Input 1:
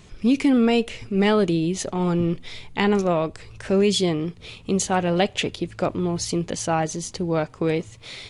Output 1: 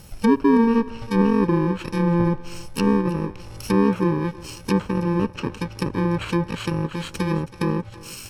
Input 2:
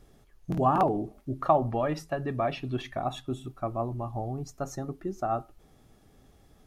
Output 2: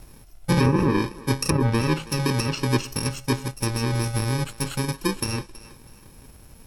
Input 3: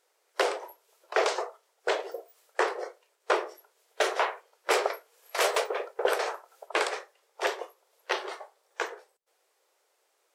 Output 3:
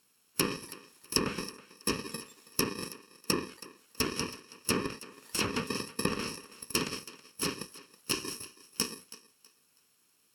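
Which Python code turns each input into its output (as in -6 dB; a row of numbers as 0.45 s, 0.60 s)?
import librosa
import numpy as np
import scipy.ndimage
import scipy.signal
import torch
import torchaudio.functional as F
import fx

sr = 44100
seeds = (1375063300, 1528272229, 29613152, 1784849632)

y = fx.bit_reversed(x, sr, seeds[0], block=64)
y = fx.env_lowpass_down(y, sr, base_hz=1100.0, full_db=-19.0)
y = fx.echo_thinned(y, sr, ms=324, feedback_pct=28, hz=370.0, wet_db=-17)
y = librosa.util.normalize(y) * 10.0 ** (-9 / 20.0)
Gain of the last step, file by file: +4.5 dB, +11.5 dB, +4.5 dB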